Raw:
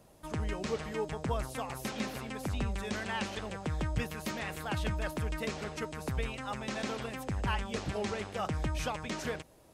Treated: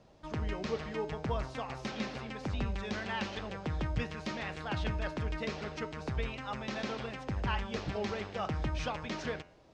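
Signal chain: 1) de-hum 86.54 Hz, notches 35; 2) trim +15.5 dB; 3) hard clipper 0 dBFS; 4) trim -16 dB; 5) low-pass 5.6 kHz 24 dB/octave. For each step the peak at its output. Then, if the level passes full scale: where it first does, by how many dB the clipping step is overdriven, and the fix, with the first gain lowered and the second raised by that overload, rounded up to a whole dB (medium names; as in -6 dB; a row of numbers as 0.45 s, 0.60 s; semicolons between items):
-19.0 dBFS, -3.5 dBFS, -3.5 dBFS, -19.5 dBFS, -19.5 dBFS; nothing clips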